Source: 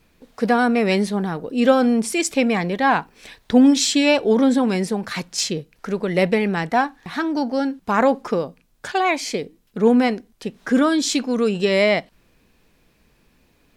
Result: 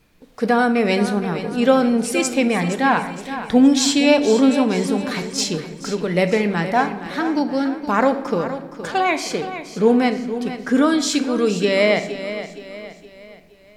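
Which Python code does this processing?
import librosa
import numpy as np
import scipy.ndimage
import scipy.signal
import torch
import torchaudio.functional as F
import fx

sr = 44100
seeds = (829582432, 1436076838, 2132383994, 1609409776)

p1 = x + fx.echo_feedback(x, sr, ms=468, feedback_pct=43, wet_db=-11.5, dry=0)
y = fx.room_shoebox(p1, sr, seeds[0], volume_m3=390.0, walls='mixed', distance_m=0.43)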